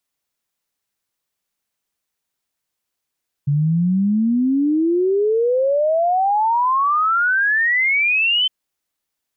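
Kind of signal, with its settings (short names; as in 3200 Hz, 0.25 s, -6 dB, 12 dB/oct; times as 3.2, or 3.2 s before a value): log sweep 140 Hz -> 3100 Hz 5.01 s -14 dBFS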